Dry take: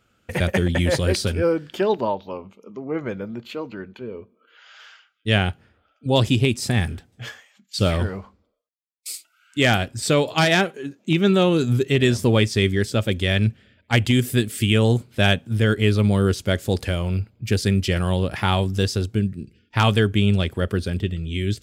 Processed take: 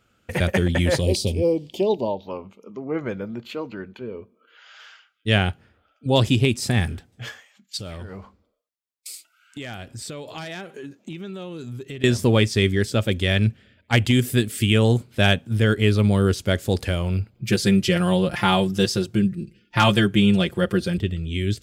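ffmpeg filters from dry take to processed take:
-filter_complex "[0:a]asettb=1/sr,asplit=3[s0][s1][s2];[s0]atrim=end=1.014[s3];[s1]atrim=start=1.01:end=2.23,asetpts=PTS-STARTPTS,afade=t=in:d=0.004:c=qsin,afade=t=out:st=1.216:d=0.004:c=qsin,asuperstop=centerf=1500:order=4:qfactor=0.77[s4];[s2]atrim=start=2.226[s5];[s3][s4]acrossfade=d=0.004:c1=hsin:c2=qsin[s6];[s6][s5]acrossfade=d=0.004:c1=qsin:c2=hsin,asettb=1/sr,asplit=3[s7][s8][s9];[s7]atrim=end=7.774[s10];[s8]atrim=start=7.77:end=12.04,asetpts=PTS-STARTPTS,afade=t=in:d=0.004:c=qsin,afade=t=out:st=4.266:d=0.004:c=qsin,acompressor=threshold=0.0251:ratio=6:attack=3.2:release=140:knee=1:detection=peak[s11];[s9]atrim=start=12.036[s12];[s10][s11]acrossfade=d=0.004:c1=hsin:c2=qsin[s13];[s13][s12]acrossfade=d=0.004:c1=qsin:c2=hsin,asettb=1/sr,asplit=3[s14][s15][s16];[s14]atrim=end=17.344[s17];[s15]atrim=start=17.34:end=20.98,asetpts=PTS-STARTPTS,afade=t=in:d=0.004:c=qsin,afade=t=out:st=3.636:d=0.004:c=qsin,aecho=1:1:5.7:0.86,atrim=end_sample=160524[s18];[s16]atrim=start=20.976[s19];[s17][s18]acrossfade=d=0.004:c1=hsin:c2=qsin[s20];[s20][s19]acrossfade=d=0.004:c1=qsin:c2=hsin"

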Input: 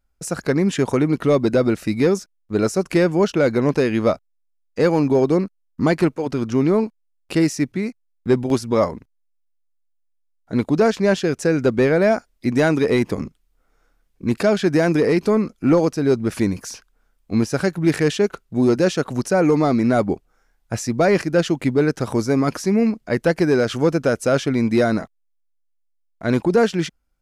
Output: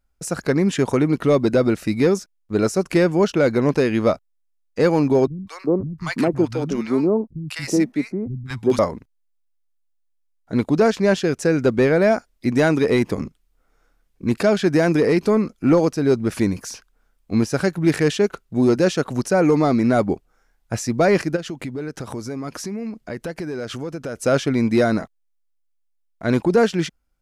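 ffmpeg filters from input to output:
-filter_complex "[0:a]asettb=1/sr,asplit=3[s0][s1][s2];[s0]atrim=end=5.274[s3];[s1]atrim=start=5.27:end=8.79,asetpts=PTS-STARTPTS,afade=t=in:d=0.004:c=qsin,afade=t=out:st=3.516:d=0.004:c=qsin,acrossover=split=160|980[s4][s5][s6];[s6]adelay=200[s7];[s5]adelay=370[s8];[s4][s8][s7]amix=inputs=3:normalize=0,atrim=end_sample=155232[s9];[s2]atrim=start=8.786[s10];[s3][s9]acrossfade=d=0.004:c1=hsin:c2=qsin[s11];[s11][s10]acrossfade=d=0.004:c1=qsin:c2=hsin,asplit=3[s12][s13][s14];[s12]afade=t=out:st=21.35:d=0.02[s15];[s13]acompressor=threshold=0.0447:ratio=4:attack=3.2:release=140:knee=1:detection=peak,afade=t=in:st=21.35:d=0.02,afade=t=out:st=24.15:d=0.02[s16];[s14]afade=t=in:st=24.15:d=0.02[s17];[s15][s16][s17]amix=inputs=3:normalize=0"

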